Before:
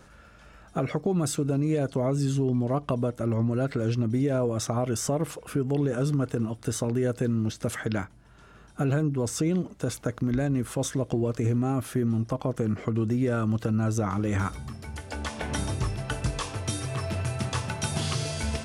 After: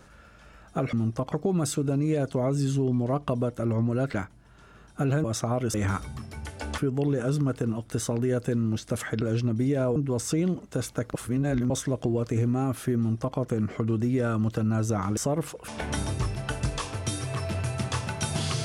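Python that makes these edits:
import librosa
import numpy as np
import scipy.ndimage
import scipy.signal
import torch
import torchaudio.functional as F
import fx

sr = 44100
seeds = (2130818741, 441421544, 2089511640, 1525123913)

y = fx.edit(x, sr, fx.swap(start_s=3.75, length_s=0.75, other_s=7.94, other_length_s=1.1),
    fx.swap(start_s=5.0, length_s=0.51, other_s=14.25, other_length_s=1.04),
    fx.reverse_span(start_s=10.22, length_s=0.56),
    fx.duplicate(start_s=12.06, length_s=0.39, to_s=0.93), tone=tone)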